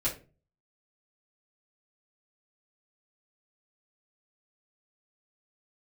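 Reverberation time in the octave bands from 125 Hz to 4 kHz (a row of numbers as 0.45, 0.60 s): 0.60, 0.45, 0.40, 0.30, 0.30, 0.25 s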